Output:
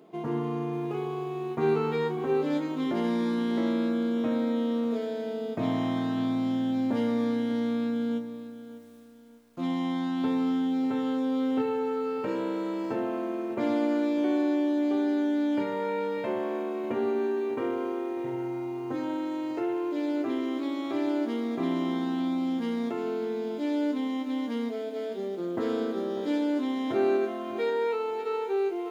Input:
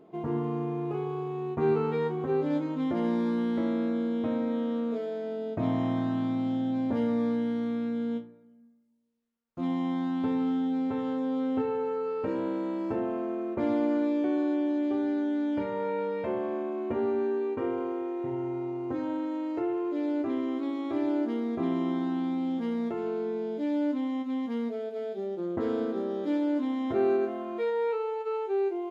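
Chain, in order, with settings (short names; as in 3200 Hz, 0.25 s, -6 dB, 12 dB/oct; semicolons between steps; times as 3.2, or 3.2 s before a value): HPF 120 Hz 24 dB/oct; high shelf 2400 Hz +10.5 dB; reverse; upward compressor, threshold -43 dBFS; reverse; lo-fi delay 0.596 s, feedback 35%, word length 9-bit, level -14 dB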